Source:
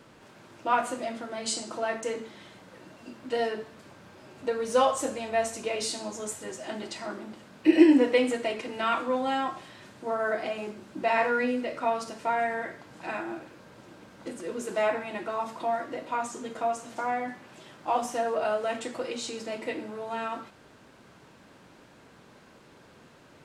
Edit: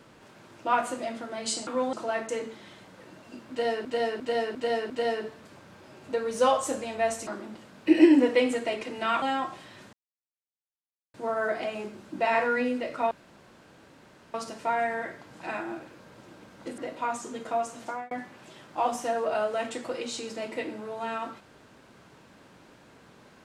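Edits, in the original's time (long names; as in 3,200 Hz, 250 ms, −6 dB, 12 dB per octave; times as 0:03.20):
0:03.24–0:03.59: repeat, 5 plays
0:05.61–0:07.05: remove
0:09.00–0:09.26: move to 0:01.67
0:09.97: splice in silence 1.21 s
0:11.94: splice in room tone 1.23 s
0:14.38–0:15.88: remove
0:16.95–0:17.21: fade out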